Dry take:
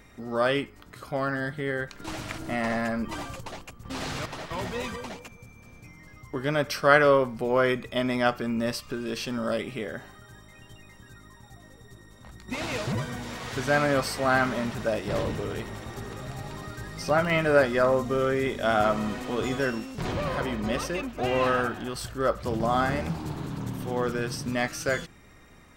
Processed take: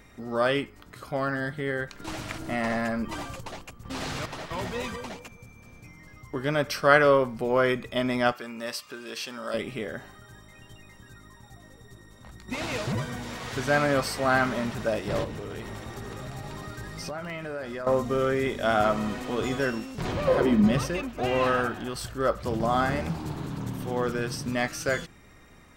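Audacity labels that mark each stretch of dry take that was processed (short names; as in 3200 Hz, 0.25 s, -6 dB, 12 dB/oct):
8.320000	9.540000	HPF 850 Hz 6 dB/oct
15.240000	17.870000	compressor, threshold -32 dBFS
20.270000	20.970000	bell 570 Hz -> 78 Hz +14.5 dB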